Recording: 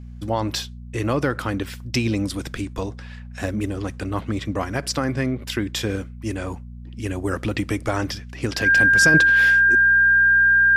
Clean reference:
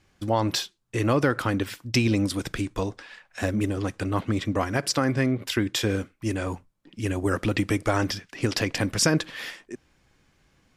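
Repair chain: de-hum 60 Hz, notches 4; band-stop 1.6 kHz, Q 30; gain correction -5 dB, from 9.14 s

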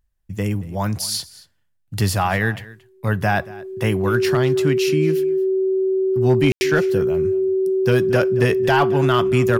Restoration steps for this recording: clip repair -8 dBFS; band-stop 380 Hz, Q 30; room tone fill 6.52–6.61 s; inverse comb 229 ms -20 dB

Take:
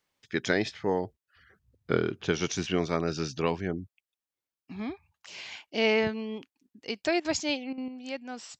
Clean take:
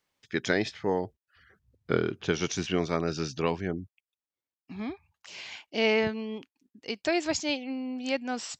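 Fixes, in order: interpolate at 7.20/7.73 s, 46 ms; gain correction +7 dB, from 7.88 s

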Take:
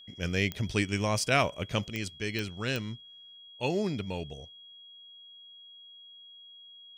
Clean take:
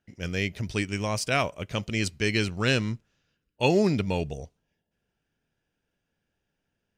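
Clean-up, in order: de-click; band-stop 3.3 kHz, Q 30; trim 0 dB, from 1.88 s +8 dB

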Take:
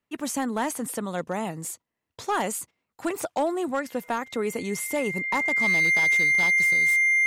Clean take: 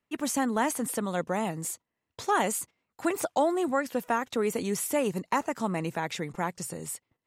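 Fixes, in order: clip repair -18.5 dBFS; band-stop 2.1 kHz, Q 30

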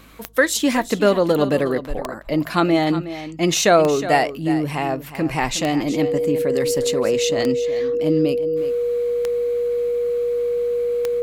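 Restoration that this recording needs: de-click; de-hum 52.9 Hz, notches 4; band-stop 480 Hz, Q 30; inverse comb 364 ms -13 dB

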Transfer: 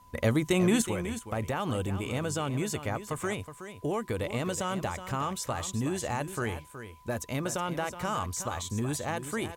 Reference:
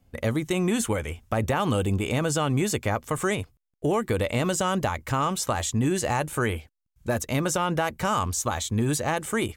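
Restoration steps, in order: band-stop 1 kHz, Q 30; expander -37 dBFS, range -21 dB; inverse comb 370 ms -11 dB; trim 0 dB, from 0.82 s +7 dB

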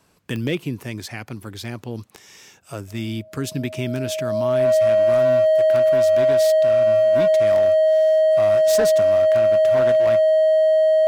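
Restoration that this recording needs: clip repair -13 dBFS; de-click; band-stop 630 Hz, Q 30

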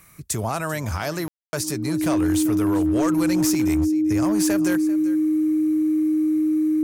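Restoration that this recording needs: clip repair -15 dBFS; band-stop 310 Hz, Q 30; room tone fill 1.28–1.53 s; inverse comb 392 ms -17.5 dB

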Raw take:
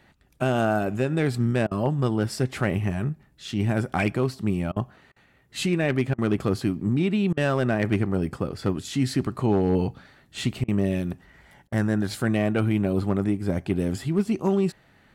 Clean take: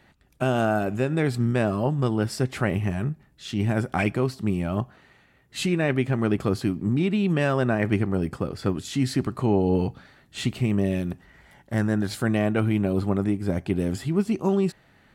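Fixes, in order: clip repair -14 dBFS; interpolate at 1.67/4.72/5.12/6.14/7.33/10.64/11.68 s, 41 ms

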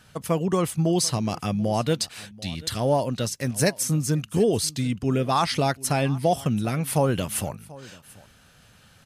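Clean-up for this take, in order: inverse comb 737 ms -21 dB

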